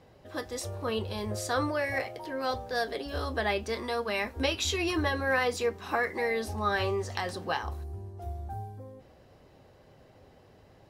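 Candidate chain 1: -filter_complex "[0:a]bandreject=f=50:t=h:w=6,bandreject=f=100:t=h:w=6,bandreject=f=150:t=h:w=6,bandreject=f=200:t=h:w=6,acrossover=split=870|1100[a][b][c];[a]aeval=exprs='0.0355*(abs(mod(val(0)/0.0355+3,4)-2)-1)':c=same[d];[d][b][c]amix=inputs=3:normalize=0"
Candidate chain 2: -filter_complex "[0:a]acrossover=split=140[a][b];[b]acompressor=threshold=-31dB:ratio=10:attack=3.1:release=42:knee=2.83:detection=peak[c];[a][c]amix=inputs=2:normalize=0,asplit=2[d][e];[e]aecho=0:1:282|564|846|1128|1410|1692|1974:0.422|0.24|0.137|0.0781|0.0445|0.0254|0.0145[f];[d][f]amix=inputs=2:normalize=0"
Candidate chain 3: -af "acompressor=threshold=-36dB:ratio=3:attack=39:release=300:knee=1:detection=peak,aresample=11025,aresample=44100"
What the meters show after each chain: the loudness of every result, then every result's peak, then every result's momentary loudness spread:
-32.5, -34.5, -37.0 LUFS; -15.0, -15.5, -15.5 dBFS; 12, 10, 7 LU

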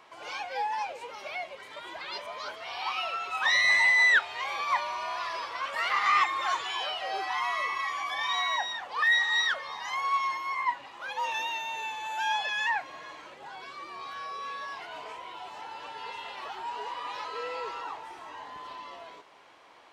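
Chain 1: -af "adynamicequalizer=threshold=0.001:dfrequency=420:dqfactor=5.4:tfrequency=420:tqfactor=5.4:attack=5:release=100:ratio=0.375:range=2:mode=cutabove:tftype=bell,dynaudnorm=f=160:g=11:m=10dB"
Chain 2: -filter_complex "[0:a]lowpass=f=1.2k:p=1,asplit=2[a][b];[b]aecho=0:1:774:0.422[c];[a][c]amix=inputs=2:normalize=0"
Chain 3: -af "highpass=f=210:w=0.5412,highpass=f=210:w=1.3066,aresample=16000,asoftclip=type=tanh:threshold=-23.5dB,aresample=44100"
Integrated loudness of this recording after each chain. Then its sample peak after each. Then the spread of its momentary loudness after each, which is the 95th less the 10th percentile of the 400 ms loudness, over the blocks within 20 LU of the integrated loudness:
-19.5, -33.5, -31.5 LUFS; -3.5, -17.0, -22.0 dBFS; 19, 15, 16 LU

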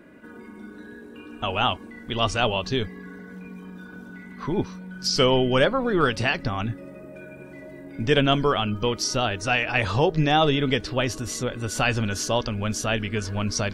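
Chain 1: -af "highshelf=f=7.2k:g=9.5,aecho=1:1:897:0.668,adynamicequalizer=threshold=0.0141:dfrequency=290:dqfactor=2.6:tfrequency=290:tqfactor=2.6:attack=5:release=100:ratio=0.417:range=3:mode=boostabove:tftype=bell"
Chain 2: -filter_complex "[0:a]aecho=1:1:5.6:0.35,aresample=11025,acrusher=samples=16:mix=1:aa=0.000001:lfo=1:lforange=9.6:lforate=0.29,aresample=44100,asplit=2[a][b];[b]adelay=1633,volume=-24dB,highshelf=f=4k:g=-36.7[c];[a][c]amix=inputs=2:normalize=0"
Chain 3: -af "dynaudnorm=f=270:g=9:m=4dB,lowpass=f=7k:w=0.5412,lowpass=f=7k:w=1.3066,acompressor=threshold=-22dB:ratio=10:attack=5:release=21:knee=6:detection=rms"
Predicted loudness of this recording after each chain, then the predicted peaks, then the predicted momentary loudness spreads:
-21.0, -24.5, -26.5 LUFS; -5.0, -6.5, -11.0 dBFS; 13, 20, 14 LU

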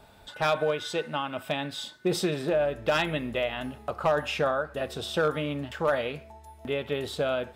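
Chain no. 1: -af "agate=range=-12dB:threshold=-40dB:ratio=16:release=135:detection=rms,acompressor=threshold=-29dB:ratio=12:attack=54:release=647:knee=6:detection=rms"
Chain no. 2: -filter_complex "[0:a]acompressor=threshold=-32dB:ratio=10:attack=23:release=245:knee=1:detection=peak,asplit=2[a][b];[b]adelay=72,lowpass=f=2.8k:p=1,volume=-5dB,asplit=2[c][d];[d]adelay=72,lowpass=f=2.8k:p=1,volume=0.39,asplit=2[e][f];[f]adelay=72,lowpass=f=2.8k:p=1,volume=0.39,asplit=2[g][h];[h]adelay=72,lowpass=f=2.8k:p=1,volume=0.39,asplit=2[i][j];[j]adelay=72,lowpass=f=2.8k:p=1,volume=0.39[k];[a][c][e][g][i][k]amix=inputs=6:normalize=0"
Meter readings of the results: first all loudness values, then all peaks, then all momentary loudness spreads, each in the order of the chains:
-35.0, -34.5 LUFS; -17.5, -17.0 dBFS; 4, 4 LU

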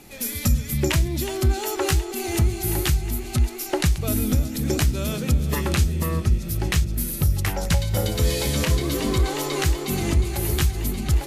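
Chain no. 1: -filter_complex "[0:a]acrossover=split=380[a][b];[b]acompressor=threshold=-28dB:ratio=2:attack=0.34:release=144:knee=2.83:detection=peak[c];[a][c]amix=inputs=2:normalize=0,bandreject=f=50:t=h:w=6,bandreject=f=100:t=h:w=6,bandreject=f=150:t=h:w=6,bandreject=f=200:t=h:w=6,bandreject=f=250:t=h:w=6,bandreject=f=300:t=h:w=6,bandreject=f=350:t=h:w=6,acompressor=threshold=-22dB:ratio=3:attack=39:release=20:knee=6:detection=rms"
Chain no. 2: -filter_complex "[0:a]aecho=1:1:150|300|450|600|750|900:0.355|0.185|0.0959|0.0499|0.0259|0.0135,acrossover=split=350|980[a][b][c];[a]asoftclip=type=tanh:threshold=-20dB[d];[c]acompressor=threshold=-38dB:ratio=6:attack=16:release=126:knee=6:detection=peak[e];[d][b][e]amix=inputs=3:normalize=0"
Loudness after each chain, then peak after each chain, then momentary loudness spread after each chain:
-26.5, -26.5 LUFS; -12.0, -11.0 dBFS; 3, 3 LU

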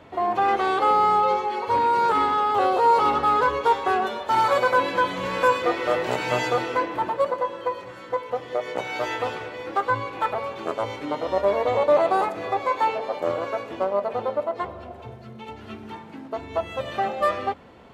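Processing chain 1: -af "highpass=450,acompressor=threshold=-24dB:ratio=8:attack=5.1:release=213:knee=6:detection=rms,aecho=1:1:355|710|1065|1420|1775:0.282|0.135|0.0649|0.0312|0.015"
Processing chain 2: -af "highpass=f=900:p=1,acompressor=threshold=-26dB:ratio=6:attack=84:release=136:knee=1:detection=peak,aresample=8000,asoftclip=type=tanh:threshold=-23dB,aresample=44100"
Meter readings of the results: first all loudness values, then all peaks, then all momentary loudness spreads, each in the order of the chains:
-30.0, -30.5 LUFS; -16.5, -21.0 dBFS; 8, 10 LU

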